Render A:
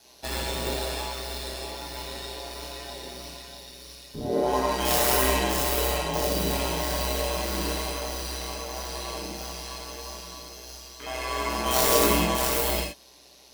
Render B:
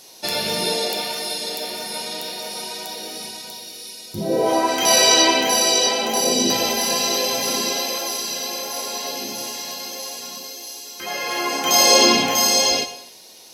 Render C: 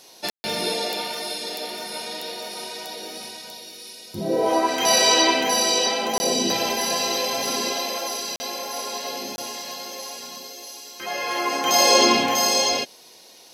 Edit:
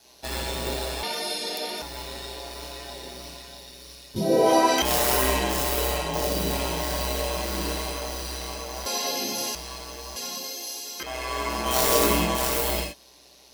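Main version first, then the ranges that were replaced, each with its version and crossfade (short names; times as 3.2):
A
1.03–1.82 from C
4.16–4.82 from B
8.86–9.55 from B
10.16–11.03 from B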